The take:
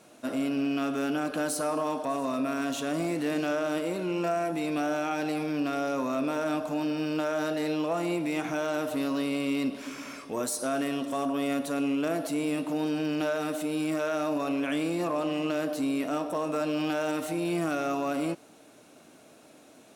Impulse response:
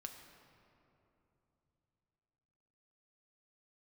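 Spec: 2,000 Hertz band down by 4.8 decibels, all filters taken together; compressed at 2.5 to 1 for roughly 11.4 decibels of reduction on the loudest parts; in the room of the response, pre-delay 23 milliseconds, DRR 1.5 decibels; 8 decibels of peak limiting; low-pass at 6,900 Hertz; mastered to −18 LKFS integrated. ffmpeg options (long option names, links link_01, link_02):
-filter_complex "[0:a]lowpass=6900,equalizer=frequency=2000:width_type=o:gain=-7,acompressor=threshold=-44dB:ratio=2.5,alimiter=level_in=13.5dB:limit=-24dB:level=0:latency=1,volume=-13.5dB,asplit=2[link_01][link_02];[1:a]atrim=start_sample=2205,adelay=23[link_03];[link_02][link_03]afir=irnorm=-1:irlink=0,volume=2.5dB[link_04];[link_01][link_04]amix=inputs=2:normalize=0,volume=24.5dB"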